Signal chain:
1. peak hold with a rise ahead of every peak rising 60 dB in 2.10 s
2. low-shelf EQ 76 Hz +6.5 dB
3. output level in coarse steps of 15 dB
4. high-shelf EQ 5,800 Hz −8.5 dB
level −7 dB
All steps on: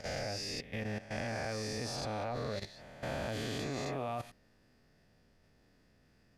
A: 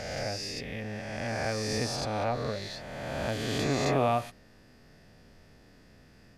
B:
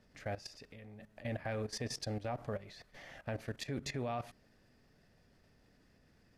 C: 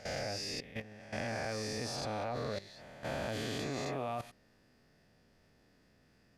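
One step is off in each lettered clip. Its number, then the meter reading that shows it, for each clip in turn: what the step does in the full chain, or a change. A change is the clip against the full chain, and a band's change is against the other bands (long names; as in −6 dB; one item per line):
3, change in momentary loudness spread +5 LU
1, change in momentary loudness spread +9 LU
2, 125 Hz band −2.0 dB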